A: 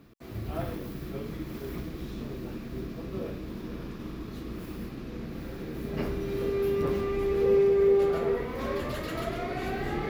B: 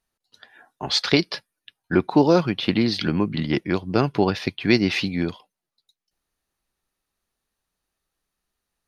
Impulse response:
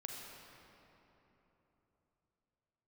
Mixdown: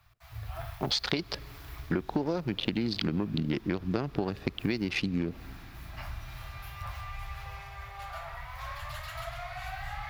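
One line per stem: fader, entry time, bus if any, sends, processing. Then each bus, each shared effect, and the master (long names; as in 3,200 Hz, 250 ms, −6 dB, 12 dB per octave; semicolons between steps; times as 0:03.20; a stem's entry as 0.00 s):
−3.5 dB, 0.00 s, send −11.5 dB, inverse Chebyshev band-stop filter 180–470 Hz, stop band 40 dB
+3.0 dB, 0.00 s, send −22 dB, adaptive Wiener filter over 41 samples; downward compressor 3 to 1, threshold −22 dBFS, peak gain reduction 9 dB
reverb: on, RT60 3.6 s, pre-delay 35 ms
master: downward compressor 4 to 1, threshold −27 dBFS, peak gain reduction 10.5 dB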